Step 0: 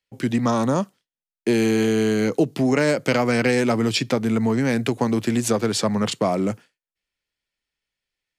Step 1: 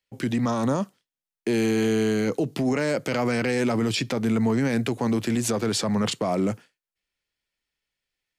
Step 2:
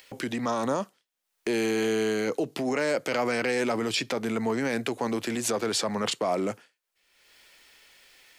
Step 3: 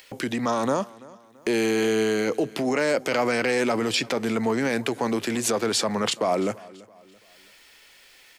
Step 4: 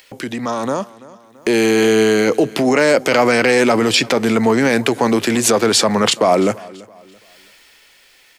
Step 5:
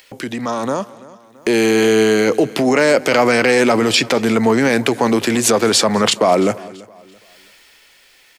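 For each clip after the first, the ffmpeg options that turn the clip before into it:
-af "alimiter=limit=-16dB:level=0:latency=1:release=19"
-af "bass=f=250:g=-13,treble=f=4k:g=-1,acompressor=mode=upward:threshold=-33dB:ratio=2.5"
-af "aecho=1:1:335|670|1005:0.0841|0.0345|0.0141,volume=3.5dB"
-af "dynaudnorm=f=200:g=13:m=8dB,volume=2.5dB"
-af "aecho=1:1:206:0.0668"

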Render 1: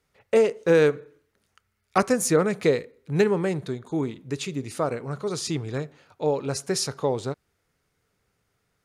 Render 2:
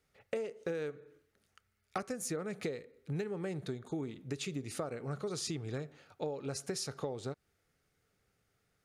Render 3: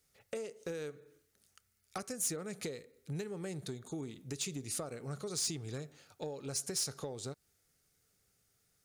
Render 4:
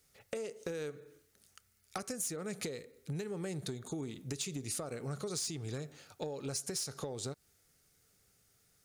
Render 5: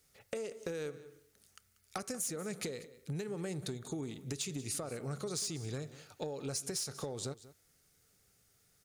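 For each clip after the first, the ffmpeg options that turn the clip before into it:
-af "bandreject=f=990:w=7,acompressor=threshold=-30dB:ratio=16,volume=-4dB"
-af "bass=f=250:g=2,treble=f=4k:g=14,asoftclip=type=tanh:threshold=-24.5dB,volume=-3.5dB"
-af "acompressor=threshold=-40dB:ratio=6,volume=4.5dB"
-af "aecho=1:1:188:0.141"

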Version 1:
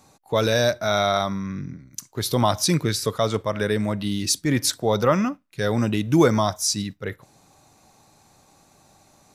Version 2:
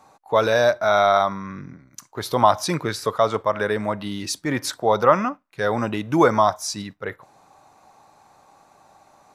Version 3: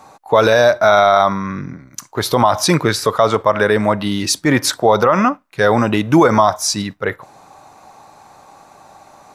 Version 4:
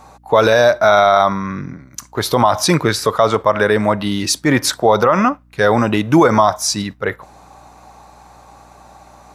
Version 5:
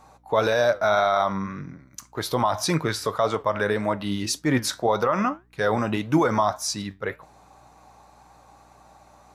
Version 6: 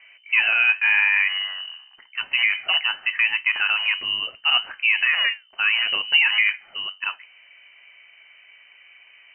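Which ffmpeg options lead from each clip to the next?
-af "equalizer=f=960:w=0.51:g=15,volume=-7.5dB"
-af "alimiter=level_in=11dB:limit=-1dB:release=50:level=0:latency=1,volume=-1dB"
-af "aeval=exprs='val(0)+0.00355*(sin(2*PI*60*n/s)+sin(2*PI*2*60*n/s)/2+sin(2*PI*3*60*n/s)/3+sin(2*PI*4*60*n/s)/4+sin(2*PI*5*60*n/s)/5)':c=same"
-af "flanger=delay=6.2:depth=4.2:regen=76:speed=1.8:shape=sinusoidal,volume=-5dB"
-af "lowpass=f=2.6k:t=q:w=0.5098,lowpass=f=2.6k:t=q:w=0.6013,lowpass=f=2.6k:t=q:w=0.9,lowpass=f=2.6k:t=q:w=2.563,afreqshift=-3100,bandreject=f=500:w=12,volume=2dB"

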